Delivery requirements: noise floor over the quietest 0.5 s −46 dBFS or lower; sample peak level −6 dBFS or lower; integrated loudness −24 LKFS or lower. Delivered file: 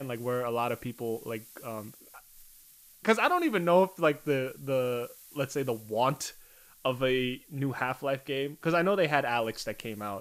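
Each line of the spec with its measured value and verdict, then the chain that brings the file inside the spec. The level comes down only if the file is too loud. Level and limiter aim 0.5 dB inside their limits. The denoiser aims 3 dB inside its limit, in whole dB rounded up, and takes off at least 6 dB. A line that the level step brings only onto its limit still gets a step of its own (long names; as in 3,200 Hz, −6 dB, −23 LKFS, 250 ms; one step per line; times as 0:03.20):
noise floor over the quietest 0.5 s −56 dBFS: in spec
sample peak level −9.5 dBFS: in spec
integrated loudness −30.0 LKFS: in spec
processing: no processing needed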